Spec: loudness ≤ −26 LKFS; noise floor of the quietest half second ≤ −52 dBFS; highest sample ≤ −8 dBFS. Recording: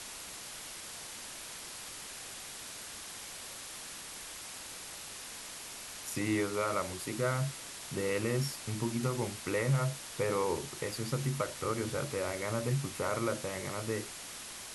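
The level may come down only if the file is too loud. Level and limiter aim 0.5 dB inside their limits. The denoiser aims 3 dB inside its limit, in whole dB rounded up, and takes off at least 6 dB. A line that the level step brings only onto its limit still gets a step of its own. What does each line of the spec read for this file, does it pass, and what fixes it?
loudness −36.0 LKFS: in spec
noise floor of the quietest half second −45 dBFS: out of spec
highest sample −18.5 dBFS: in spec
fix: broadband denoise 10 dB, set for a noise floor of −45 dBFS

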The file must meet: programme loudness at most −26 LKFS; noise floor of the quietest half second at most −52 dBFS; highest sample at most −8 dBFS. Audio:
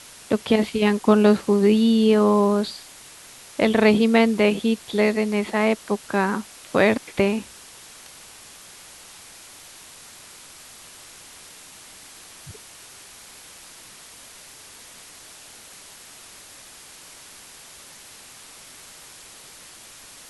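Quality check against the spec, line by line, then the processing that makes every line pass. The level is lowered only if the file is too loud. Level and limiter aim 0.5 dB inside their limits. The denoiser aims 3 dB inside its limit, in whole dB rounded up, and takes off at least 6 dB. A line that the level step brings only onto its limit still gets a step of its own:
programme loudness −20.0 LKFS: out of spec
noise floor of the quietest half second −45 dBFS: out of spec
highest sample −3.5 dBFS: out of spec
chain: broadband denoise 6 dB, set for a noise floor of −45 dBFS
level −6.5 dB

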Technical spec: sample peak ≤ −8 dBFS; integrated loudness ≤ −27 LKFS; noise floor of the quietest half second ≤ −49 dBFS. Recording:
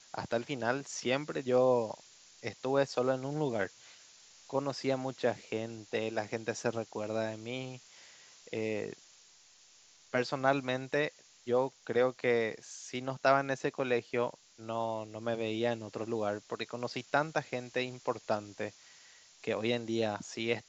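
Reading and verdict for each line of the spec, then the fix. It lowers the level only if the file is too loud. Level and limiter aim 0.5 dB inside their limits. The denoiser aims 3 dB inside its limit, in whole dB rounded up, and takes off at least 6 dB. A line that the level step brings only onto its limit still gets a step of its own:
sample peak −11.5 dBFS: in spec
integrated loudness −34.0 LKFS: in spec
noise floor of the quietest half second −61 dBFS: in spec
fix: no processing needed

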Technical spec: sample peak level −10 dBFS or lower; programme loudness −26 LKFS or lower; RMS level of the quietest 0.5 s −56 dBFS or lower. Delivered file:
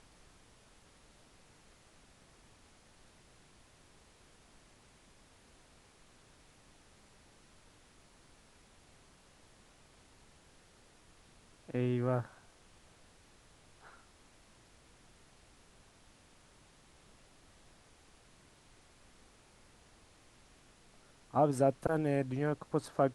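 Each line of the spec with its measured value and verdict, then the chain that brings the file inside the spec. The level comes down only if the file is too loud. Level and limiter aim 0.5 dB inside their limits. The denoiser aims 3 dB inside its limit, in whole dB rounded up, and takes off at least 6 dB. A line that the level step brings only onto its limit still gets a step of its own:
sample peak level −15.5 dBFS: in spec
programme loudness −33.5 LKFS: in spec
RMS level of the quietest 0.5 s −63 dBFS: in spec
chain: no processing needed

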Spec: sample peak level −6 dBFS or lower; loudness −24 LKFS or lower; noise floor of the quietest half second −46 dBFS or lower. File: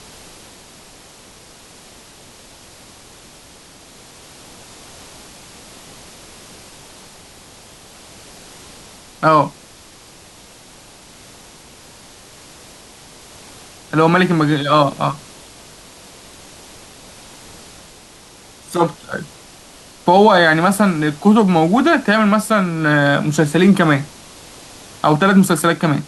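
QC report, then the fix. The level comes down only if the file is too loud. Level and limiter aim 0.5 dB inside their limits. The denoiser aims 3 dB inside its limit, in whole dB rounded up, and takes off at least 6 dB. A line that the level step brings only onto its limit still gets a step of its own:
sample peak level −1.5 dBFS: out of spec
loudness −14.5 LKFS: out of spec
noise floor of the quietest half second −43 dBFS: out of spec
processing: level −10 dB

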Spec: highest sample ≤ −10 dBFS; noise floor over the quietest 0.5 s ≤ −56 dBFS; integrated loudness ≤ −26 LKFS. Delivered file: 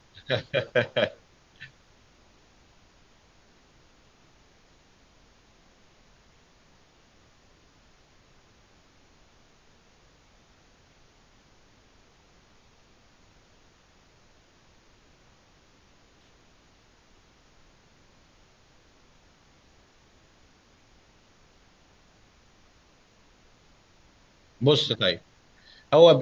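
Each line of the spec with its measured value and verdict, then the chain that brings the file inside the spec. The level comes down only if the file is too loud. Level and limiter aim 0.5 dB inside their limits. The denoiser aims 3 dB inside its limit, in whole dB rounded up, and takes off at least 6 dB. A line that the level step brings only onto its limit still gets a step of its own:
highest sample −4.0 dBFS: out of spec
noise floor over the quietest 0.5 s −60 dBFS: in spec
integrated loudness −23.5 LKFS: out of spec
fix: level −3 dB
brickwall limiter −10.5 dBFS

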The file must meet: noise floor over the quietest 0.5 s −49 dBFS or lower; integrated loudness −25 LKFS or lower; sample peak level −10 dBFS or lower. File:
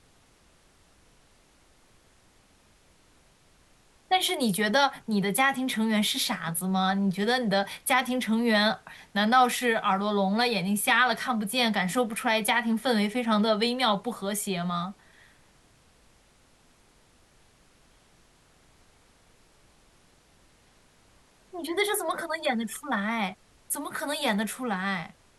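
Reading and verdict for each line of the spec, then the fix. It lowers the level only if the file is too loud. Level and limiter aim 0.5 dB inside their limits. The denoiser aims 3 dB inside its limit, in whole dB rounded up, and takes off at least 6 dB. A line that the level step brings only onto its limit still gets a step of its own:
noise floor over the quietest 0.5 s −61 dBFS: in spec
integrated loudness −26.0 LKFS: in spec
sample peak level −8.5 dBFS: out of spec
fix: brickwall limiter −10.5 dBFS

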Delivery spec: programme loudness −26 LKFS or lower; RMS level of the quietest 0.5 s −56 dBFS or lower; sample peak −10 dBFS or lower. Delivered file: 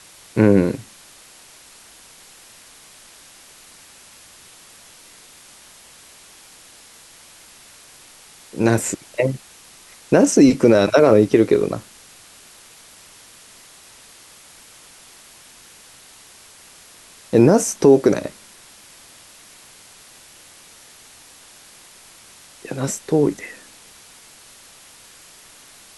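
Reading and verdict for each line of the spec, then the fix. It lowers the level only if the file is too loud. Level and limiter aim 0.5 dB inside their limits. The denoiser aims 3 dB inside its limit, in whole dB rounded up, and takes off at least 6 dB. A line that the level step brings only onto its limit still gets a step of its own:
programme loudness −17.0 LKFS: out of spec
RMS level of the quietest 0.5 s −46 dBFS: out of spec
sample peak −3.0 dBFS: out of spec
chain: broadband denoise 6 dB, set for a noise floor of −46 dBFS
level −9.5 dB

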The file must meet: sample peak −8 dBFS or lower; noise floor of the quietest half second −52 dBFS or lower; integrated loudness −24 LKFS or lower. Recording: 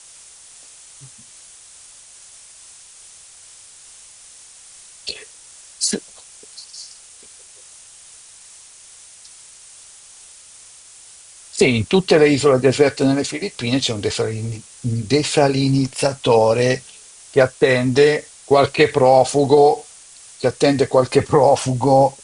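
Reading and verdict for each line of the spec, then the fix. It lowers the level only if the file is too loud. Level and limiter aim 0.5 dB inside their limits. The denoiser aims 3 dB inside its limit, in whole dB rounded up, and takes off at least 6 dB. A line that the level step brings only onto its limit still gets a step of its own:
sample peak −2.0 dBFS: out of spec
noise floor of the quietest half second −44 dBFS: out of spec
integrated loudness −17.0 LKFS: out of spec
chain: broadband denoise 6 dB, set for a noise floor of −44 dBFS
level −7.5 dB

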